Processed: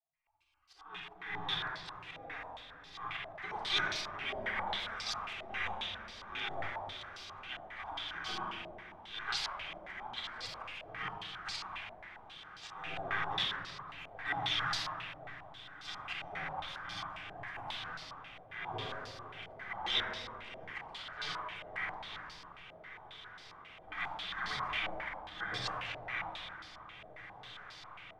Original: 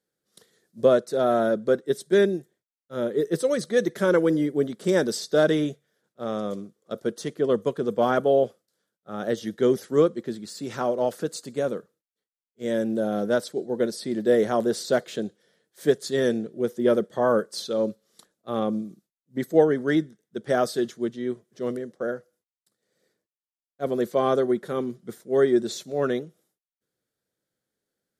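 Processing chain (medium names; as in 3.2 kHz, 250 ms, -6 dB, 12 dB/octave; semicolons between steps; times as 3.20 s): companding laws mixed up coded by mu; peaking EQ 180 Hz +6 dB 0.56 oct; hum notches 60/120/180/240/300/360/420/480/540 Hz; pre-echo 53 ms -22 dB; compression 4:1, threshold -28 dBFS, peak gain reduction 13 dB; slow attack 304 ms; spectral gate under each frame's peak -30 dB weak; on a send: echo that smears into a reverb 1705 ms, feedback 71%, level -13 dB; on the sum: simulated room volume 2900 m³, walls mixed, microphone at 3.7 m; step-sequenced low-pass 7.4 Hz 650–4700 Hz; trim +9.5 dB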